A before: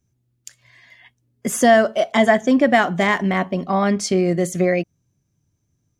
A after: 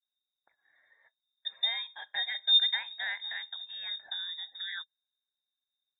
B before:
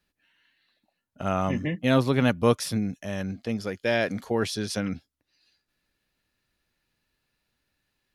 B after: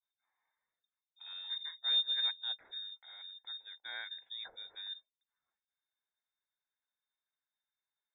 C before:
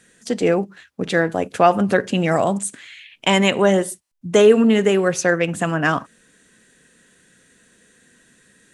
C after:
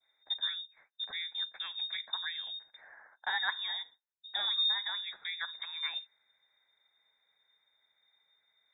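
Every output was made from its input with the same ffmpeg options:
-filter_complex "[0:a]adynamicequalizer=threshold=0.0251:dfrequency=2000:dqfactor=1.7:tfrequency=2000:tqfactor=1.7:attack=5:release=100:ratio=0.375:range=2.5:mode=boostabove:tftype=bell,asplit=3[a][b][c];[a]bandpass=f=270:t=q:w=8,volume=0dB[d];[b]bandpass=f=2.29k:t=q:w=8,volume=-6dB[e];[c]bandpass=f=3.01k:t=q:w=8,volume=-9dB[f];[d][e][f]amix=inputs=3:normalize=0,lowpass=f=3.3k:t=q:w=0.5098,lowpass=f=3.3k:t=q:w=0.6013,lowpass=f=3.3k:t=q:w=0.9,lowpass=f=3.3k:t=q:w=2.563,afreqshift=-3900,volume=-5.5dB"

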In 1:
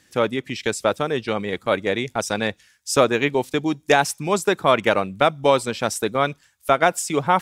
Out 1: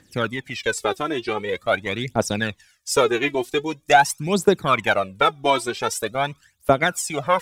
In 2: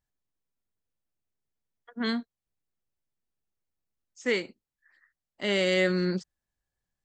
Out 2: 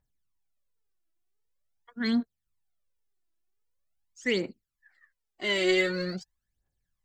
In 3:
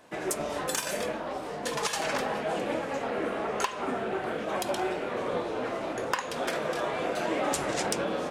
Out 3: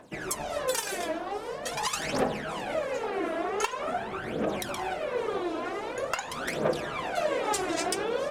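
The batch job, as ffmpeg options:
-af "aphaser=in_gain=1:out_gain=1:delay=3.1:decay=0.73:speed=0.45:type=triangular,volume=-3dB"

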